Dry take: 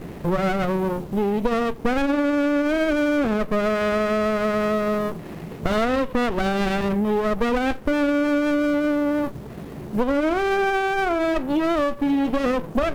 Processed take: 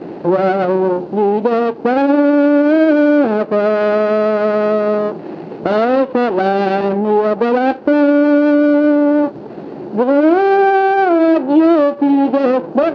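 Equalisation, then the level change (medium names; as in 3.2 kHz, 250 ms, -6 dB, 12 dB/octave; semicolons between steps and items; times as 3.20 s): cabinet simulation 330–5600 Hz, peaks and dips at 330 Hz +6 dB, 560 Hz +3 dB, 820 Hz +8 dB, 1.5 kHz +6 dB, 2.7 kHz +5 dB, 4.4 kHz +8 dB; tilt shelf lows +9 dB, about 810 Hz; +4.0 dB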